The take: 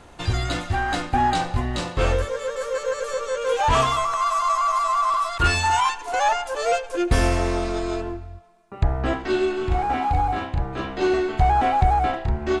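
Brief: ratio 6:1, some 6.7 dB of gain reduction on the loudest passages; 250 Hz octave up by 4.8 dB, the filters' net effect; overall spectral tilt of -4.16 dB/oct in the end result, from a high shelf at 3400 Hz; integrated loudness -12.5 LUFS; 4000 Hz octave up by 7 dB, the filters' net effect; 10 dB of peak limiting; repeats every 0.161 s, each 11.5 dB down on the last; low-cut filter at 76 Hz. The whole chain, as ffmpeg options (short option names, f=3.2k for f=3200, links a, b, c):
-af "highpass=76,equalizer=f=250:t=o:g=7,highshelf=f=3.4k:g=5.5,equalizer=f=4k:t=o:g=5,acompressor=threshold=-21dB:ratio=6,alimiter=limit=-19.5dB:level=0:latency=1,aecho=1:1:161|322|483:0.266|0.0718|0.0194,volume=15dB"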